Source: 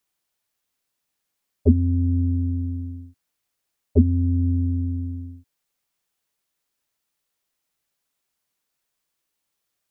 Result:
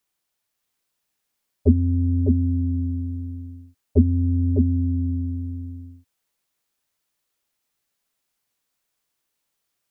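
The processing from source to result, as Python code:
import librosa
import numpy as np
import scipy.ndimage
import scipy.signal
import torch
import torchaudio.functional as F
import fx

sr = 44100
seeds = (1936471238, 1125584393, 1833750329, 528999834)

y = x + 10.0 ** (-4.5 / 20.0) * np.pad(x, (int(604 * sr / 1000.0), 0))[:len(x)]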